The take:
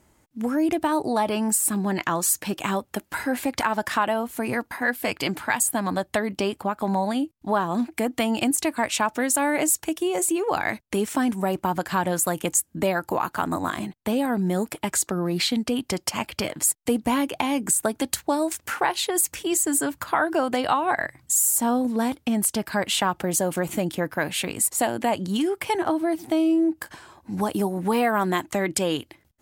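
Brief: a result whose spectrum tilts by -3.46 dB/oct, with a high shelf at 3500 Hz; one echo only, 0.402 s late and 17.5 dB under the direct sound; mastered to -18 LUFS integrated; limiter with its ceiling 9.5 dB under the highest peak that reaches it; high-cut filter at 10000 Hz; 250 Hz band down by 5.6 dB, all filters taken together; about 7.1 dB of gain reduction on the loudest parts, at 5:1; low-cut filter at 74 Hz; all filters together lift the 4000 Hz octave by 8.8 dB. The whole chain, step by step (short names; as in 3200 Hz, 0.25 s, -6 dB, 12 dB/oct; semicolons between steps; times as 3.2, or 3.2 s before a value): HPF 74 Hz; LPF 10000 Hz; bell 250 Hz -7.5 dB; high shelf 3500 Hz +6.5 dB; bell 4000 Hz +7 dB; compressor 5:1, threshold -21 dBFS; limiter -15.5 dBFS; echo 0.402 s -17.5 dB; gain +9.5 dB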